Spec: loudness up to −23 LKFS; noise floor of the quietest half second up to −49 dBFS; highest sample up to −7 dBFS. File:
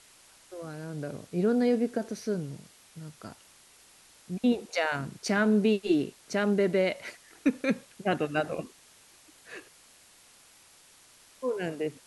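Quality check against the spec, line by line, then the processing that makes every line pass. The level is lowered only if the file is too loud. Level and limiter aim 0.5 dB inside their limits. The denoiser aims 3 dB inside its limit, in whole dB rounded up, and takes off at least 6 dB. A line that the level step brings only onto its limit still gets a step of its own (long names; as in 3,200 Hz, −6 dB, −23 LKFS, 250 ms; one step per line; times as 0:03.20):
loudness −29.0 LKFS: in spec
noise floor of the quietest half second −58 dBFS: in spec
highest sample −14.0 dBFS: in spec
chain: no processing needed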